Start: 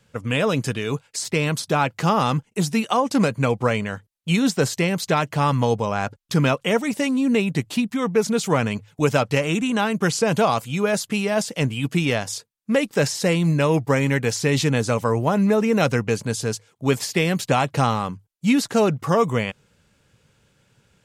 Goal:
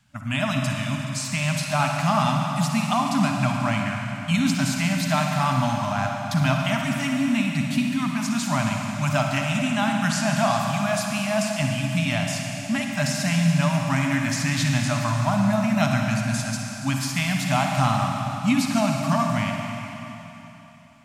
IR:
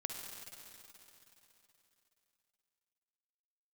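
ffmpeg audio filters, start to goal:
-filter_complex "[1:a]atrim=start_sample=2205[a];[0:a][a]afir=irnorm=-1:irlink=0,afftfilt=real='re*(1-between(b*sr/4096,290,580))':imag='im*(1-between(b*sr/4096,290,580))':win_size=4096:overlap=0.75"

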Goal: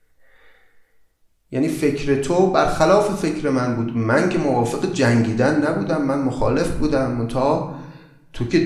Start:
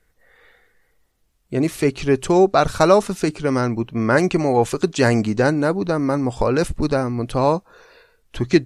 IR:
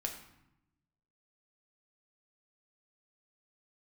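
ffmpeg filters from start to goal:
-filter_complex "[1:a]atrim=start_sample=2205[a];[0:a][a]afir=irnorm=-1:irlink=0,volume=-1dB"

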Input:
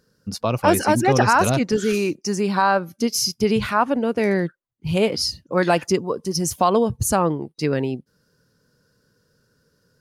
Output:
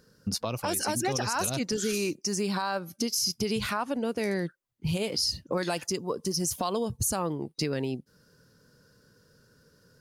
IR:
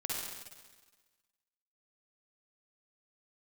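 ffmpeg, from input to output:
-filter_complex "[0:a]acrossover=split=4000[a][b];[a]acompressor=threshold=-31dB:ratio=4[c];[c][b]amix=inputs=2:normalize=0,alimiter=limit=-21.5dB:level=0:latency=1:release=61,acontrast=74,volume=-4dB"

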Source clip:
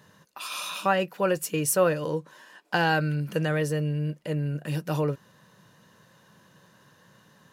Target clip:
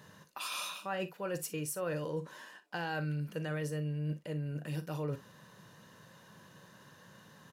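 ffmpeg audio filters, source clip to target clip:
-af "areverse,acompressor=threshold=-35dB:ratio=6,areverse,aecho=1:1:40|59:0.211|0.133"

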